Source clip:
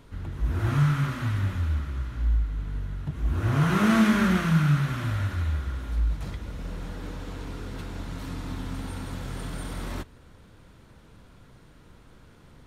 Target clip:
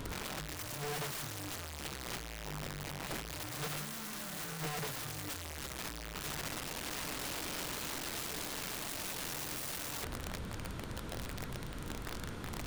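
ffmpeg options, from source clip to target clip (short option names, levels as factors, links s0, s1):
-af "alimiter=limit=0.0891:level=0:latency=1:release=34,asoftclip=type=tanh:threshold=0.0133,bandreject=f=150.1:t=h:w=4,bandreject=f=300.2:t=h:w=4,bandreject=f=450.3:t=h:w=4,bandreject=f=600.4:t=h:w=4,bandreject=f=750.5:t=h:w=4,bandreject=f=900.6:t=h:w=4,bandreject=f=1050.7:t=h:w=4,bandreject=f=1200.8:t=h:w=4,bandreject=f=1350.9:t=h:w=4,bandreject=f=1501:t=h:w=4,bandreject=f=1651.1:t=h:w=4,bandreject=f=1801.2:t=h:w=4,bandreject=f=1951.3:t=h:w=4,aeval=exprs='(mod(168*val(0)+1,2)-1)/168':c=same,volume=3.35"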